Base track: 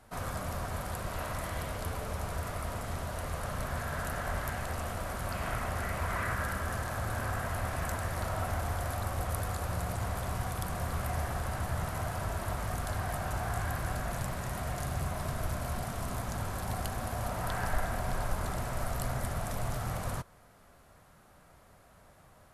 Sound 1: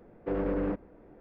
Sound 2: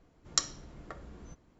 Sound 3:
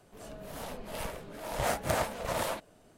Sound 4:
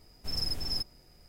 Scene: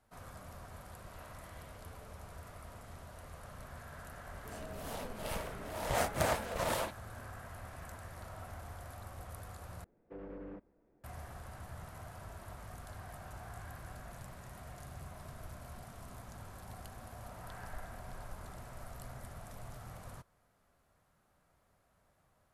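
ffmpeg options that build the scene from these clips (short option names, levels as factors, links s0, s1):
-filter_complex "[0:a]volume=0.2,asplit=2[s0][s1];[s0]atrim=end=9.844[s2];[1:a]atrim=end=1.2,asetpts=PTS-STARTPTS,volume=0.141[s3];[s1]atrim=start=11.036[s4];[3:a]atrim=end=2.97,asetpts=PTS-STARTPTS,volume=0.794,afade=t=in:d=0.004:c=hsin,afade=t=out:st=2.966:d=0.004:c=hsin,adelay=4310[s5];[s2][s3]acrossfade=d=0.004:c1=hsin:c2=hsin[s6];[s6][s4]acrossfade=d=0.004:c1=hsin:c2=hsin[s7];[s7][s5]amix=inputs=2:normalize=0"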